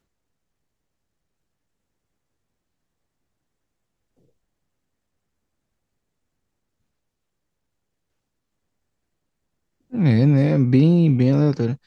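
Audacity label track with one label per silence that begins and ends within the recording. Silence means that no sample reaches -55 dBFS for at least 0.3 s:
4.300000	9.900000	silence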